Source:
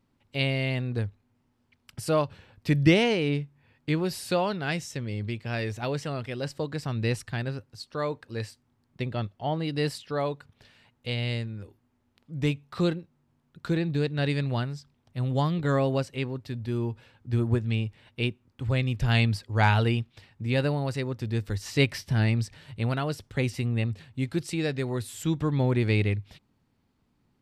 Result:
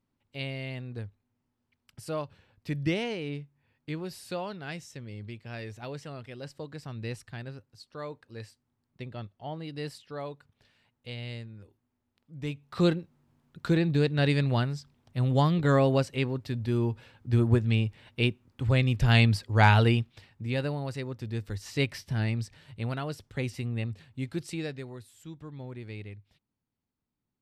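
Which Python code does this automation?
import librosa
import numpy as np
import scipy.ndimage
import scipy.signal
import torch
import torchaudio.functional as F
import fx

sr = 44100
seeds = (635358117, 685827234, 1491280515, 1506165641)

y = fx.gain(x, sr, db=fx.line((12.45, -9.0), (12.86, 2.0), (19.9, 2.0), (20.61, -5.0), (24.57, -5.0), (25.13, -17.0)))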